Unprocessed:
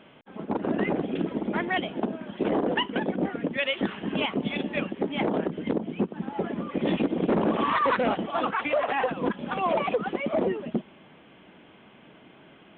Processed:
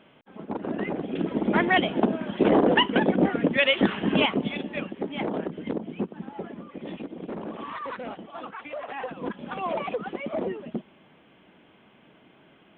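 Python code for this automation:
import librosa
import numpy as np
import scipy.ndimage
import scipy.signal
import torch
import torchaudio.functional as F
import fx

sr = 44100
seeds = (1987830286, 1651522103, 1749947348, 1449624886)

y = fx.gain(x, sr, db=fx.line((0.98, -3.5), (1.55, 6.0), (4.2, 6.0), (4.61, -3.0), (6.08, -3.0), (6.86, -11.5), (8.68, -11.5), (9.39, -4.0)))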